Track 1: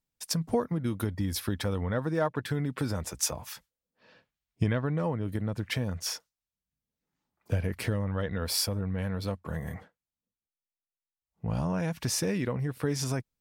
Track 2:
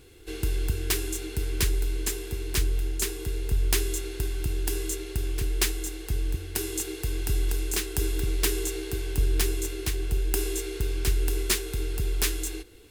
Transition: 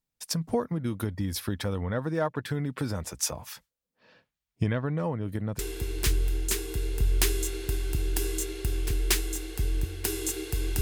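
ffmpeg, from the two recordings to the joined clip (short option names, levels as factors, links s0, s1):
-filter_complex "[0:a]apad=whole_dur=10.81,atrim=end=10.81,atrim=end=5.592[s0];[1:a]atrim=start=2.098:end=7.32[s1];[s0][s1]acrossfade=d=0.004:c1=hsin:c2=hsin"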